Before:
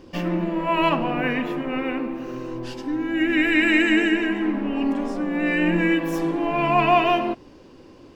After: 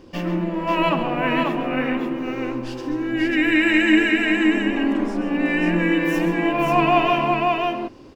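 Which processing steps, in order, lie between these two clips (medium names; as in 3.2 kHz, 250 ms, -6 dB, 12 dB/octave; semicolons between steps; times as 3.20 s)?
multi-tap echo 137/540 ms -11/-3 dB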